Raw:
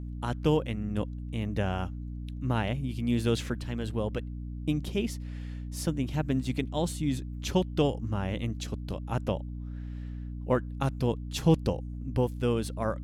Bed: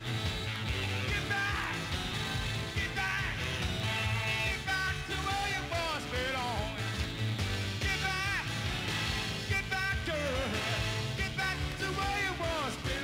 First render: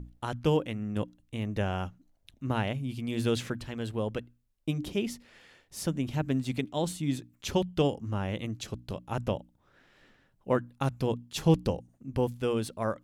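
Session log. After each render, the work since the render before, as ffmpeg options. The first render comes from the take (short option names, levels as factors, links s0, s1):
-af "bandreject=f=60:t=h:w=6,bandreject=f=120:t=h:w=6,bandreject=f=180:t=h:w=6,bandreject=f=240:t=h:w=6,bandreject=f=300:t=h:w=6"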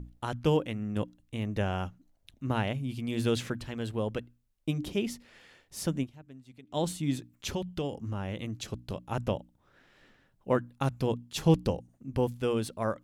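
-filter_complex "[0:a]asettb=1/sr,asplit=3[s0][s1][s2];[s0]atrim=end=7.494[s3];[s1]atrim=start=7.49:end=8.63,asetpts=PTS-STARTPTS,afade=t=in:d=0.004:c=qsin,afade=t=out:st=1.136:d=0.004:c=qsin,acompressor=threshold=0.0282:ratio=2.5:attack=3.2:release=140:knee=1:detection=peak[s4];[s2]atrim=start=8.626[s5];[s3][s4]acrossfade=d=0.004:c1=hsin:c2=qsin[s6];[s6][s5]acrossfade=d=0.004:c1=qsin:c2=hsin,asplit=3[s7][s8][s9];[s7]atrim=end=6.27,asetpts=PTS-STARTPTS,afade=t=out:st=6.03:d=0.24:c=exp:silence=0.0891251[s10];[s8]atrim=start=6.27:end=6.49,asetpts=PTS-STARTPTS,volume=0.0891[s11];[s9]atrim=start=6.49,asetpts=PTS-STARTPTS,afade=t=in:d=0.24:c=exp:silence=0.0891251[s12];[s10][s11][s12]concat=n=3:v=0:a=1"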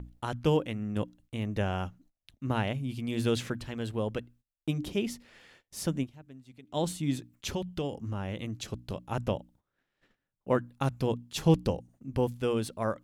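-af "agate=range=0.1:threshold=0.00126:ratio=16:detection=peak"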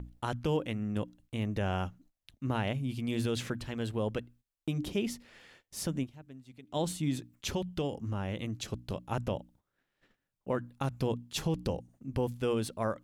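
-af "alimiter=limit=0.0891:level=0:latency=1:release=74"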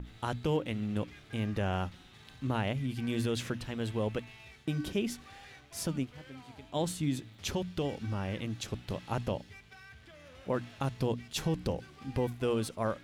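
-filter_complex "[1:a]volume=0.0944[s0];[0:a][s0]amix=inputs=2:normalize=0"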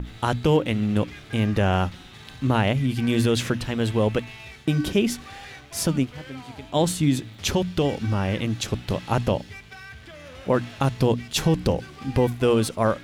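-af "volume=3.55"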